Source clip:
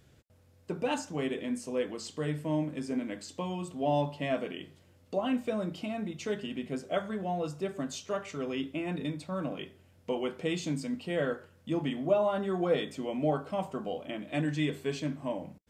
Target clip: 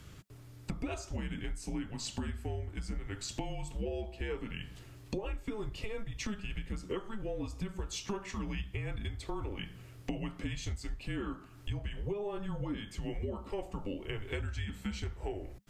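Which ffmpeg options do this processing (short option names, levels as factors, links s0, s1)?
-af "afreqshift=-210,acompressor=threshold=0.00631:ratio=12,volume=3.16"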